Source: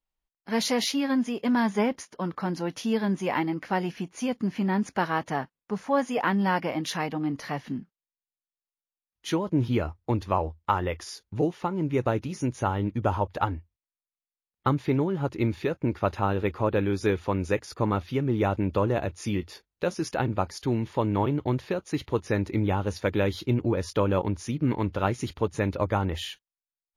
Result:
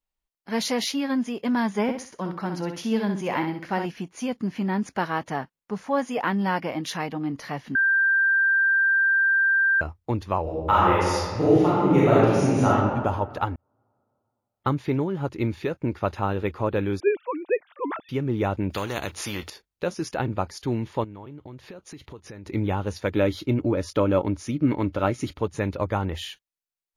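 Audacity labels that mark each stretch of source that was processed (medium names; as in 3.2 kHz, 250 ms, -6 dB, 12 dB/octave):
1.820000	3.860000	feedback delay 63 ms, feedback 28%, level -7 dB
7.750000	9.810000	bleep 1.58 kHz -17 dBFS
10.420000	12.670000	reverb throw, RT60 1.7 s, DRR -8.5 dB
13.560000	14.670000	fade in
17.000000	18.090000	formants replaced by sine waves
18.700000	19.500000	spectrum-flattening compressor 2:1
21.040000	22.460000	compression 5:1, threshold -39 dBFS
23.160000	25.390000	small resonant body resonances 290/580/1300/2200 Hz, height 7 dB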